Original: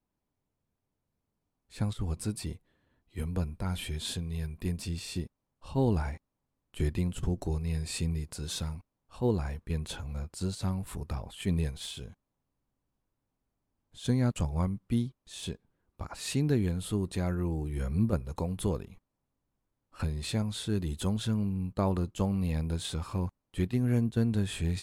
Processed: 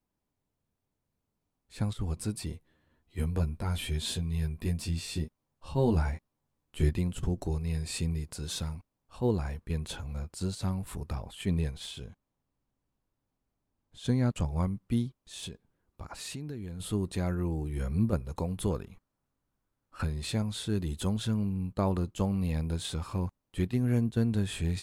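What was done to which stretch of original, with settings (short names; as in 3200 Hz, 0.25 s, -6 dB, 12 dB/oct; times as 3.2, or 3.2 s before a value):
2.52–6.93 doubler 13 ms -4 dB
11.42–14.5 high shelf 6800 Hz -5.5 dB
15.45–16.8 compressor 4:1, threshold -37 dBFS
18.7–20.14 bell 1400 Hz +5.5 dB 0.57 oct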